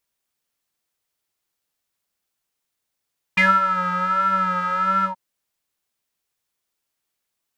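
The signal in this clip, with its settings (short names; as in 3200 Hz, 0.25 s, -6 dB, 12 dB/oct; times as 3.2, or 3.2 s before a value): synth patch with vibrato F#3, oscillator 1 triangle, oscillator 2 square, interval 0 st, detune 17 cents, oscillator 2 level -10 dB, sub -21.5 dB, filter bandpass, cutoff 850 Hz, Q 11, filter envelope 1.5 oct, filter decay 0.12 s, filter sustain 45%, attack 8.5 ms, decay 0.22 s, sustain -10 dB, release 0.11 s, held 1.67 s, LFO 1.4 Hz, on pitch 55 cents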